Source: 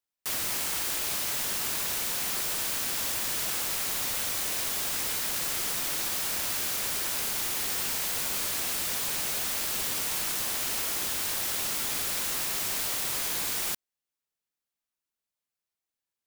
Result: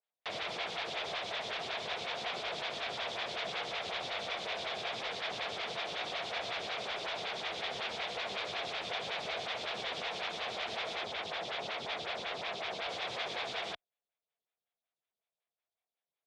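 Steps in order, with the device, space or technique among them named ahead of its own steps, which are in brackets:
0:11.03–0:12.89: high-shelf EQ 7,300 Hz −7.5 dB
vibe pedal into a guitar amplifier (phaser with staggered stages 5.4 Hz; tube saturation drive 29 dB, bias 0.7; loudspeaker in its box 75–4,400 Hz, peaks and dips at 280 Hz −9 dB, 470 Hz +5 dB, 690 Hz +10 dB, 2,300 Hz +5 dB, 3,500 Hz +8 dB)
level +3 dB

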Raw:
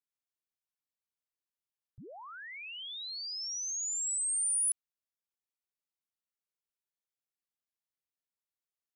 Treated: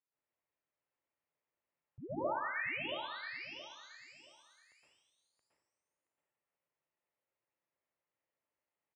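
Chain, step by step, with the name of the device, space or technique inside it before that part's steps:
bass amplifier (downward compressor 4 to 1, threshold −38 dBFS, peak gain reduction 8.5 dB; loudspeaker in its box 71–2,200 Hz, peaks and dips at 200 Hz −10 dB, 560 Hz +3 dB, 1,500 Hz −5 dB)
0:02.01–0:02.51: comb filter 3.3 ms, depth 64%
repeating echo 674 ms, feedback 25%, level −7 dB
dense smooth reverb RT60 0.72 s, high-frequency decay 1×, pre-delay 105 ms, DRR −7.5 dB
level +1.5 dB

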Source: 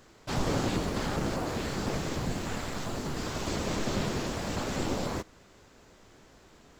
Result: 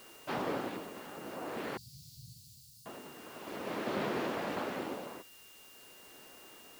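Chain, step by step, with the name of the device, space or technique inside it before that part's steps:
shortwave radio (band-pass filter 280–2,600 Hz; amplitude tremolo 0.47 Hz, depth 80%; steady tone 2,800 Hz −60 dBFS; white noise bed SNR 18 dB)
0:01.77–0:02.86: Chebyshev band-stop filter 130–4,500 Hz, order 4
level +1 dB

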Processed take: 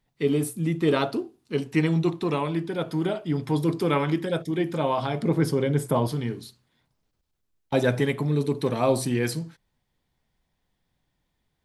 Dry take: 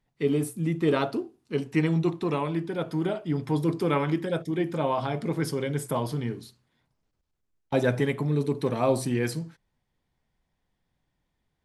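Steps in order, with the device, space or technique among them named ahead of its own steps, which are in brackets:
presence and air boost (parametric band 3,800 Hz +3 dB 0.85 octaves; high-shelf EQ 9,600 Hz +5 dB)
0:05.22–0:06.08: tilt shelving filter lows +4.5 dB, about 1,500 Hz
level +1.5 dB

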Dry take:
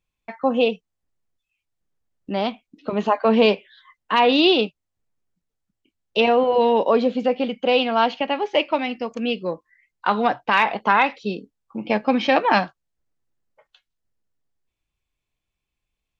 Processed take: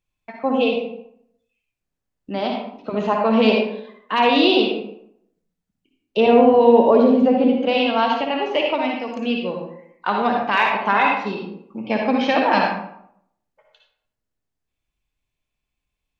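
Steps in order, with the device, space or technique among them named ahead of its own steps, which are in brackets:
0:06.17–0:07.58: tilt shelving filter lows +6 dB, about 1,100 Hz
bathroom (convolution reverb RT60 0.70 s, pre-delay 51 ms, DRR 0.5 dB)
level −2 dB

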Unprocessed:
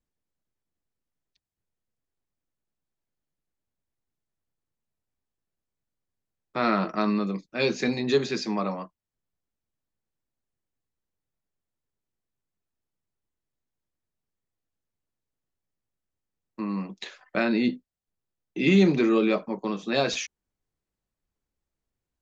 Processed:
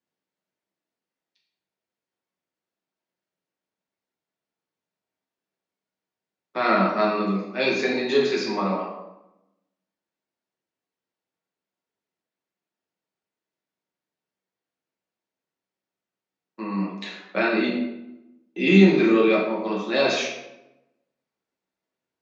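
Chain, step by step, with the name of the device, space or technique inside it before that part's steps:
supermarket ceiling speaker (band-pass filter 280–5,500 Hz; convolution reverb RT60 0.95 s, pre-delay 5 ms, DRR −4 dB)

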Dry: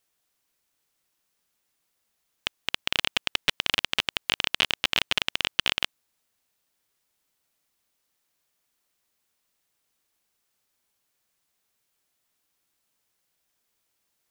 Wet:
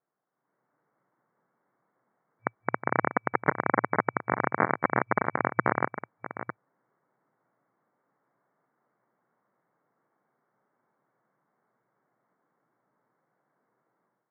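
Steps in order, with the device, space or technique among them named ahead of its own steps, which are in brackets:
delay that plays each chunk backwards 465 ms, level −11.5 dB
brick-wall band-pass 110–2,300 Hz
action camera in a waterproof case (low-pass filter 1,400 Hz 24 dB per octave; automatic gain control gain up to 11.5 dB; AAC 48 kbit/s 24,000 Hz)

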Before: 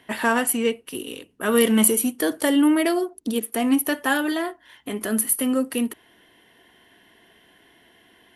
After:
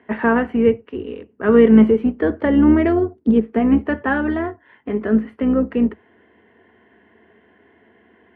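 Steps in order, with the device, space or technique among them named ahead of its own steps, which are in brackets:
0:02.68–0:03.59: bass and treble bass +6 dB, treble +4 dB
sub-octave bass pedal (sub-octave generator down 2 octaves, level −1 dB; loudspeaker in its box 88–2,100 Hz, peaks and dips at 150 Hz −8 dB, 220 Hz +8 dB, 430 Hz +8 dB)
level +1.5 dB

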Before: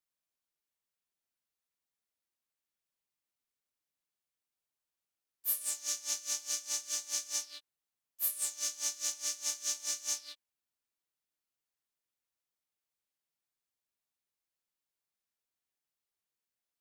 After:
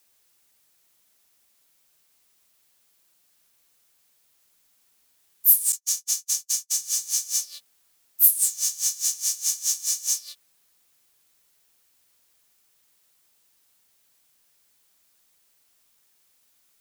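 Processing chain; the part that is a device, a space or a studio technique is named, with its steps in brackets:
turntable without a phono preamp (RIAA equalisation recording; white noise bed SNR 35 dB)
0:05.72–0:06.74: noise gate −28 dBFS, range −49 dB
high-shelf EQ 3,800 Hz +6 dB
level −4.5 dB

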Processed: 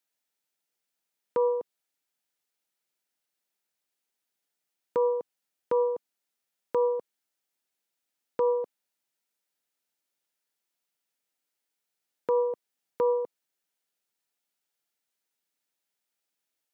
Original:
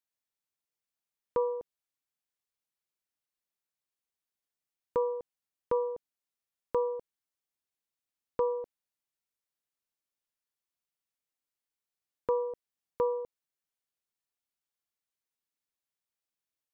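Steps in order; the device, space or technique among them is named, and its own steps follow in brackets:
PA system with an anti-feedback notch (high-pass filter 180 Hz; Butterworth band-reject 1,100 Hz, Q 7.9; brickwall limiter −24.5 dBFS, peak gain reduction 5.5 dB)
level +7 dB

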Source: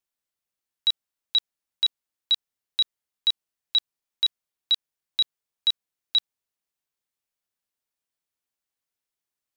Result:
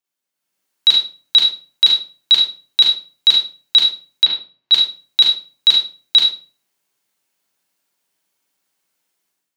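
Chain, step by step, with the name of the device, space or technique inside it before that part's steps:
far laptop microphone (convolution reverb RT60 0.35 s, pre-delay 35 ms, DRR −2.5 dB; high-pass filter 170 Hz 12 dB per octave; automatic gain control gain up to 11.5 dB)
0:04.25–0:04.72: high-frequency loss of the air 230 metres

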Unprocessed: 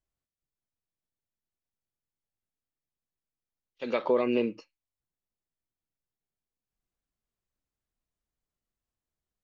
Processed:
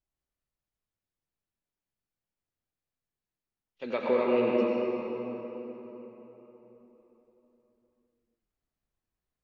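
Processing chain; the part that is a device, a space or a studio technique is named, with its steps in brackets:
swimming-pool hall (convolution reverb RT60 4.1 s, pre-delay 80 ms, DRR −3.5 dB; high-shelf EQ 4,200 Hz −7 dB)
level −2.5 dB

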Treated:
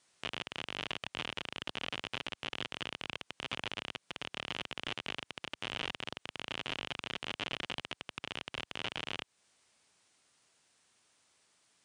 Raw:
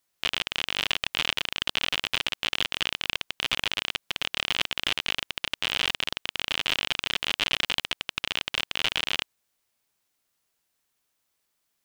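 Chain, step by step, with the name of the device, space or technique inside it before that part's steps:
podcast mastering chain (high-pass filter 82 Hz 12 dB per octave; de-essing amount 70%; downward compressor 2.5 to 1, threshold −43 dBFS, peak gain reduction 10 dB; brickwall limiter −28 dBFS, peak gain reduction 7.5 dB; level +9 dB; MP3 128 kbit/s 22,050 Hz)

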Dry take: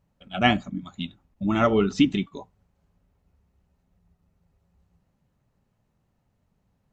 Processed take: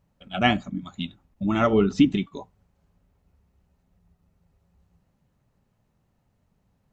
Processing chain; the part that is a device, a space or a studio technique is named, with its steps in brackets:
0:01.73–0:02.17: tilt shelving filter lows +3 dB
parallel compression (in parallel at −7 dB: downward compressor, threshold −29 dBFS, peak gain reduction 16.5 dB)
on the sum: level −1.5 dB

